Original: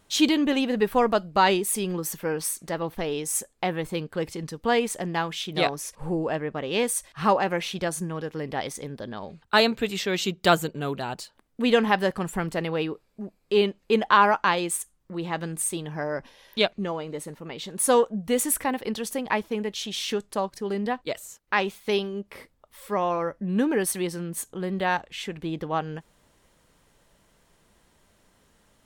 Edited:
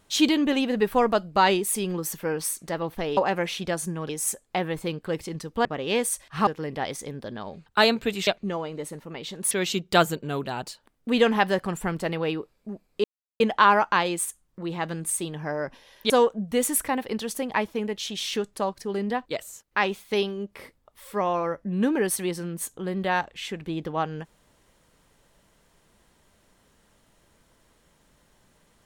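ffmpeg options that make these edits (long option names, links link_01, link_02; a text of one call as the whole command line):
ffmpeg -i in.wav -filter_complex "[0:a]asplit=10[link_01][link_02][link_03][link_04][link_05][link_06][link_07][link_08][link_09][link_10];[link_01]atrim=end=3.172[link_11];[link_02]atrim=start=7.308:end=8.232[link_12];[link_03]atrim=start=3.168:end=4.732[link_13];[link_04]atrim=start=6.488:end=7.312[link_14];[link_05]atrim=start=8.228:end=10.032[link_15];[link_06]atrim=start=16.618:end=17.862[link_16];[link_07]atrim=start=10.028:end=13.56,asetpts=PTS-STARTPTS,afade=type=out:start_time=3.528:duration=0.004:curve=hsin[link_17];[link_08]atrim=start=13.56:end=13.92,asetpts=PTS-STARTPTS,volume=0[link_18];[link_09]atrim=start=13.92:end=16.622,asetpts=PTS-STARTPTS,afade=type=in:duration=0.004:curve=hsin[link_19];[link_10]atrim=start=17.858[link_20];[link_11][link_12]acrossfade=duration=0.004:curve1=hsin:curve2=hsin[link_21];[link_21][link_13]acrossfade=duration=0.004:curve1=hsin:curve2=hsin[link_22];[link_22][link_14]acrossfade=duration=0.004:curve1=hsin:curve2=hsin[link_23];[link_23][link_15]acrossfade=duration=0.004:curve1=hsin:curve2=hsin[link_24];[link_24][link_16]acrossfade=duration=0.004:curve1=hsin:curve2=hsin[link_25];[link_17][link_18][link_19]concat=n=3:v=0:a=1[link_26];[link_25][link_26]acrossfade=duration=0.004:curve1=hsin:curve2=hsin[link_27];[link_27][link_20]acrossfade=duration=0.004:curve1=hsin:curve2=hsin" out.wav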